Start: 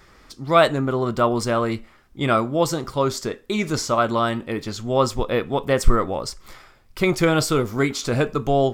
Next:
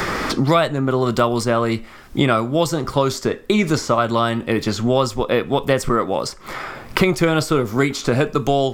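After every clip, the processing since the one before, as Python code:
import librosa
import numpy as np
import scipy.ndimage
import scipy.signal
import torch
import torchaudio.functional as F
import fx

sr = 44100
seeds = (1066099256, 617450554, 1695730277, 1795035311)

y = fx.band_squash(x, sr, depth_pct=100)
y = F.gain(torch.from_numpy(y), 2.0).numpy()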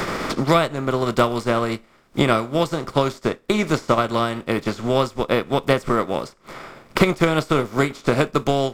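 y = fx.bin_compress(x, sr, power=0.6)
y = fx.upward_expand(y, sr, threshold_db=-29.0, expansion=2.5)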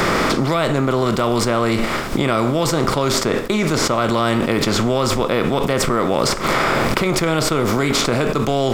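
y = fx.env_flatten(x, sr, amount_pct=100)
y = F.gain(torch.from_numpy(y), -6.5).numpy()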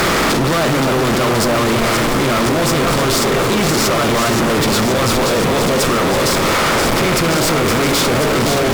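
y = fx.echo_alternate(x, sr, ms=262, hz=1000.0, feedback_pct=87, wet_db=-6.0)
y = fx.fuzz(y, sr, gain_db=30.0, gate_db=-33.0)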